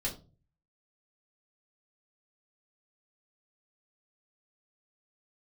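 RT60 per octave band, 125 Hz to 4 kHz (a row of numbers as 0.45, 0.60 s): 0.70, 0.50, 0.40, 0.30, 0.20, 0.25 s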